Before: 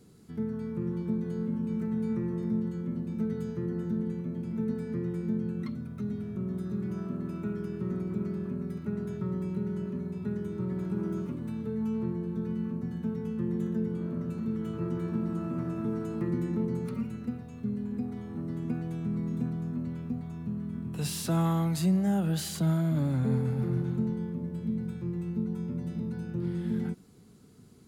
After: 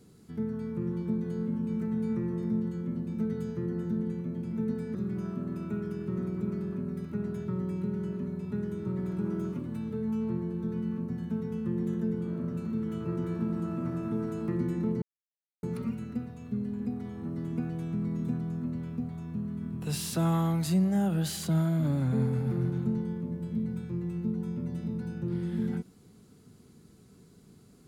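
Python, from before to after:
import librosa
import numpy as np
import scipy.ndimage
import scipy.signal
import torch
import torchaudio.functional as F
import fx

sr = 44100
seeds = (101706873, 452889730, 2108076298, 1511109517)

y = fx.edit(x, sr, fx.cut(start_s=4.95, length_s=1.73),
    fx.insert_silence(at_s=16.75, length_s=0.61), tone=tone)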